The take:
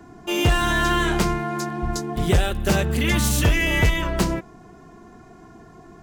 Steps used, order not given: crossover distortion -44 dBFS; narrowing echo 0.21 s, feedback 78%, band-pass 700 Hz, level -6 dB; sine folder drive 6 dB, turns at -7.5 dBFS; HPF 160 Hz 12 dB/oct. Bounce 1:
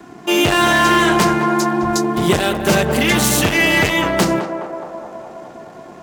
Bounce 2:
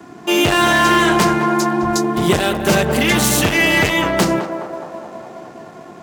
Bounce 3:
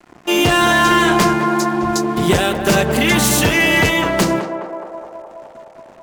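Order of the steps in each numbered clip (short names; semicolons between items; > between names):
sine folder > HPF > crossover distortion > narrowing echo; sine folder > narrowing echo > crossover distortion > HPF; HPF > crossover distortion > sine folder > narrowing echo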